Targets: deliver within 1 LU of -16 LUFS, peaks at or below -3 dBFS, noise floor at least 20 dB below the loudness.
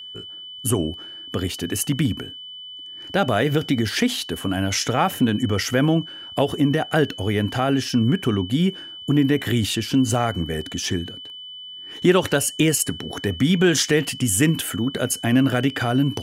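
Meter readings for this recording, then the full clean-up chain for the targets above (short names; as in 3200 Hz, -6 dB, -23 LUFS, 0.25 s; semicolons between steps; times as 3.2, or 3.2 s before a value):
steady tone 3000 Hz; tone level -35 dBFS; loudness -21.5 LUFS; peak -5.0 dBFS; loudness target -16.0 LUFS
-> notch 3000 Hz, Q 30; gain +5.5 dB; limiter -3 dBFS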